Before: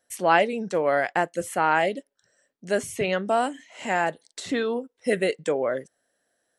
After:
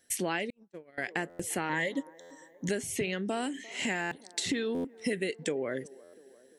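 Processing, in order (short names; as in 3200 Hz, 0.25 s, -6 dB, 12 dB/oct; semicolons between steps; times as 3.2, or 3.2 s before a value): band shelf 860 Hz -10.5 dB; compressor 6:1, threshold -37 dBFS, peak gain reduction 16.5 dB; band-limited delay 0.347 s, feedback 57%, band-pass 570 Hz, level -19.5 dB; 0.5–0.98 gate -35 dBFS, range -46 dB; 1.69–2.69 ripple EQ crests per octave 1.1, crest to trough 14 dB; stuck buffer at 1.29/2.2/4.01/4.74/6.03, samples 512, times 8; gain +7.5 dB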